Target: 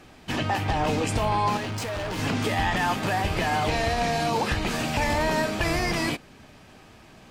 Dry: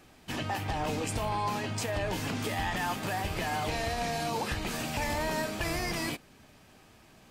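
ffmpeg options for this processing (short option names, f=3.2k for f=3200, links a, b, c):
-filter_complex "[0:a]highshelf=f=8.9k:g=-11,asettb=1/sr,asplit=3[a][b][c];[a]atrim=end=1.574[d];[b]atrim=start=1.57:end=2.19,asetpts=PTS-STARTPTS,afade=t=in:d=0.004:c=qsin,afade=t=out:st=0.616:d=0.004:c=qsin,volume=36dB,asoftclip=hard,volume=-36dB[e];[c]atrim=start=2.186[f];[d][e]acrossfade=d=0.004:c1=hsin:c2=qsin[g];[g][f]acrossfade=d=0.004:c1=qsin:c2=hsin,volume=7.5dB"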